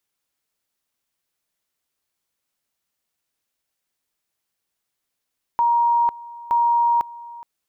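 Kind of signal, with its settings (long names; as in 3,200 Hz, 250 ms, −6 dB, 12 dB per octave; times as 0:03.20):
tone at two levels in turn 943 Hz −14.5 dBFS, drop 20 dB, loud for 0.50 s, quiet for 0.42 s, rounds 2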